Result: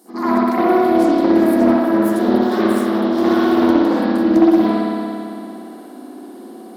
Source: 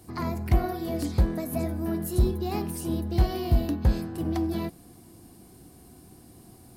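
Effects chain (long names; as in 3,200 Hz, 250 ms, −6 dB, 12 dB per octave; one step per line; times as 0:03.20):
0:01.60–0:03.83: lower of the sound and its delayed copy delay 0.56 ms
linear-phase brick-wall high-pass 200 Hz
parametric band 2,500 Hz −9.5 dB 0.66 octaves
convolution reverb RT60 2.8 s, pre-delay 57 ms, DRR −14.5 dB
highs frequency-modulated by the lows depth 0.2 ms
level +3.5 dB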